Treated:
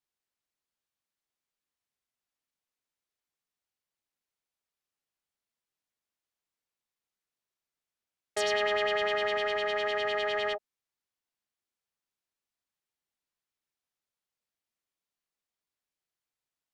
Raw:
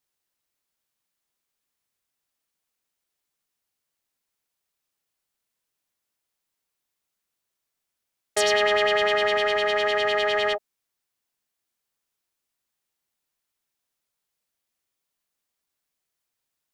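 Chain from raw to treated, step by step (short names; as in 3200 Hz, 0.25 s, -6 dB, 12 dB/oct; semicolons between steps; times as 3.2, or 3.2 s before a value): high shelf 8900 Hz -9.5 dB; gain -7 dB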